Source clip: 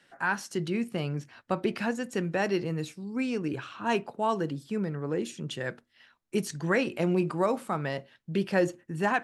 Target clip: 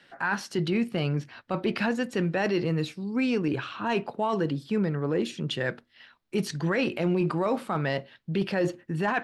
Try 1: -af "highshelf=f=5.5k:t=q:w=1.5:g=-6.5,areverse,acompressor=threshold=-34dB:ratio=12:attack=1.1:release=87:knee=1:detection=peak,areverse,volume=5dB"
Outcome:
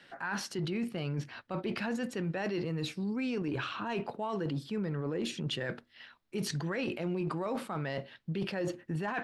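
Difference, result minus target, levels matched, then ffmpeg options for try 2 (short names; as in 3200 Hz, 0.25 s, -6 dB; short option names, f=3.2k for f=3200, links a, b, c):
compressor: peak gain reduction +8.5 dB
-af "highshelf=f=5.5k:t=q:w=1.5:g=-6.5,areverse,acompressor=threshold=-24.5dB:ratio=12:attack=1.1:release=87:knee=1:detection=peak,areverse,volume=5dB"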